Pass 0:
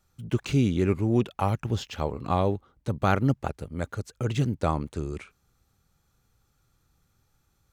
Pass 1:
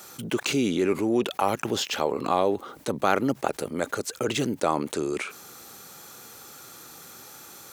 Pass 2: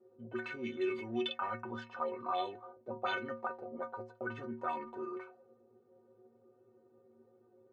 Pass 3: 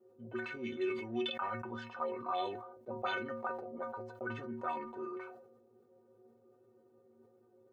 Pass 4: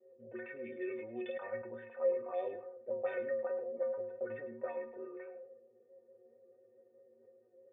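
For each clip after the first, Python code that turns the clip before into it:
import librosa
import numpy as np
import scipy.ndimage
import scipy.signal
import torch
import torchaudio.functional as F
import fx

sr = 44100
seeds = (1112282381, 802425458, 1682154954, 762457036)

y1 = scipy.signal.sosfilt(scipy.signal.cheby1(2, 1.0, 350.0, 'highpass', fs=sr, output='sos'), x)
y1 = fx.high_shelf(y1, sr, hz=6300.0, db=7.0)
y1 = fx.env_flatten(y1, sr, amount_pct=50)
y1 = y1 * librosa.db_to_amplitude(2.0)
y2 = fx.low_shelf(y1, sr, hz=360.0, db=-5.5)
y2 = fx.stiff_resonator(y2, sr, f0_hz=110.0, decay_s=0.45, stiffness=0.03)
y2 = fx.envelope_lowpass(y2, sr, base_hz=360.0, top_hz=3400.0, q=4.0, full_db=-32.0, direction='up')
y2 = y2 * librosa.db_to_amplitude(-1.5)
y3 = fx.sustainer(y2, sr, db_per_s=64.0)
y3 = y3 * librosa.db_to_amplitude(-1.0)
y4 = fx.vibrato(y3, sr, rate_hz=4.6, depth_cents=26.0)
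y4 = fx.formant_cascade(y4, sr, vowel='e')
y4 = y4 + 10.0 ** (-15.0 / 20.0) * np.pad(y4, (int(104 * sr / 1000.0), 0))[:len(y4)]
y4 = y4 * librosa.db_to_amplitude(9.0)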